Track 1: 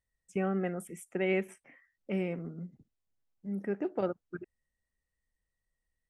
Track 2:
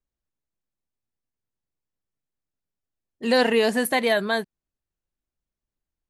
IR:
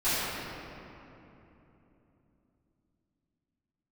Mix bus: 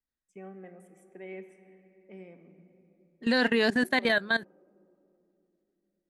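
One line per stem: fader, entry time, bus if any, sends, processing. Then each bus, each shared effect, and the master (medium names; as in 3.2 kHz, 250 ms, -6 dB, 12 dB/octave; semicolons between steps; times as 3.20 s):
-14.5 dB, 0.00 s, send -21.5 dB, high-pass 140 Hz; comb of notches 1.4 kHz
-5.5 dB, 0.00 s, no send, fifteen-band graphic EQ 250 Hz +8 dB, 1.6 kHz +10 dB, 4 kHz +6 dB; level held to a coarse grid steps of 18 dB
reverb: on, RT60 3.2 s, pre-delay 3 ms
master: low-pass 10 kHz 12 dB/octave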